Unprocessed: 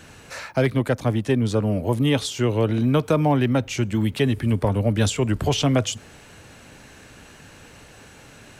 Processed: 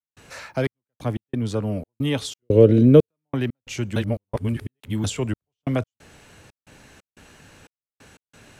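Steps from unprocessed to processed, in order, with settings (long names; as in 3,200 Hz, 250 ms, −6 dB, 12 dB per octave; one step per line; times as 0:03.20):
0:02.42–0:03.09: low shelf with overshoot 650 Hz +8.5 dB, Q 3
0:03.96–0:05.04: reverse
gate pattern ".xxx..x.xxx.xx" 90 BPM −60 dB
level −3.5 dB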